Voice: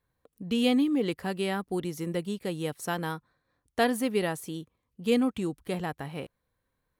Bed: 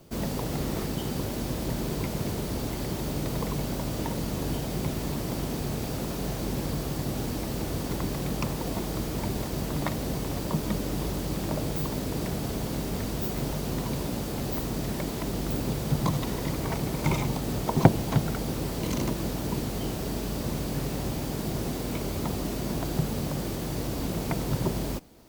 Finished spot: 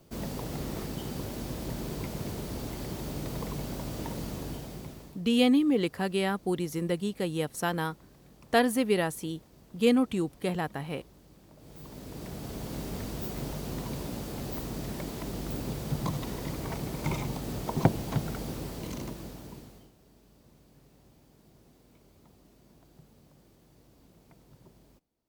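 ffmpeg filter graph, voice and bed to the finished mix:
-filter_complex "[0:a]adelay=4750,volume=1.19[s0];[1:a]volume=5.62,afade=t=out:st=4.25:d=0.97:silence=0.0944061,afade=t=in:st=11.57:d=1.25:silence=0.0944061,afade=t=out:st=18.44:d=1.47:silence=0.0668344[s1];[s0][s1]amix=inputs=2:normalize=0"

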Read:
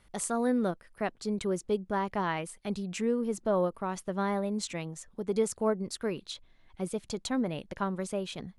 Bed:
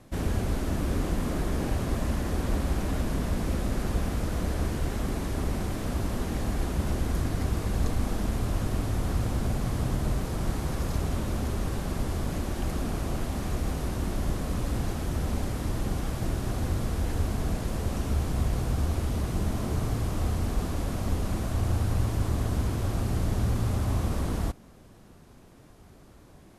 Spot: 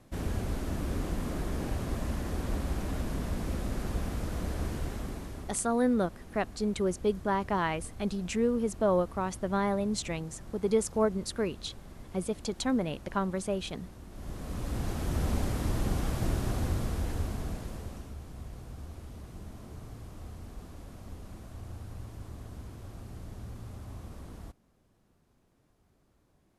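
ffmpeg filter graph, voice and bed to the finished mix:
-filter_complex "[0:a]adelay=5350,volume=1.19[s0];[1:a]volume=4.22,afade=t=out:st=4.77:d=0.86:silence=0.223872,afade=t=in:st=14.1:d=1.14:silence=0.133352,afade=t=out:st=16.34:d=1.8:silence=0.158489[s1];[s0][s1]amix=inputs=2:normalize=0"

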